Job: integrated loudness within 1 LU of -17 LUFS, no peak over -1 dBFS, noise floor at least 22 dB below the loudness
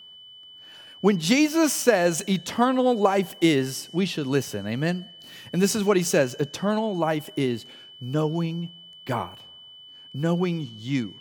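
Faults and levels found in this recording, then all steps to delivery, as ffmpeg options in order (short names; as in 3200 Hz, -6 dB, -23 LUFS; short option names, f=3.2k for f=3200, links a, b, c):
steady tone 3000 Hz; tone level -44 dBFS; loudness -24.0 LUFS; peak -4.5 dBFS; loudness target -17.0 LUFS
-> -af "bandreject=f=3k:w=30"
-af "volume=7dB,alimiter=limit=-1dB:level=0:latency=1"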